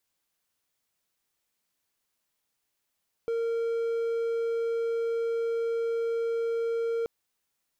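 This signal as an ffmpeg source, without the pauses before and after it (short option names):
-f lavfi -i "aevalsrc='0.0631*(1-4*abs(mod(461*t+0.25,1)-0.5))':d=3.78:s=44100"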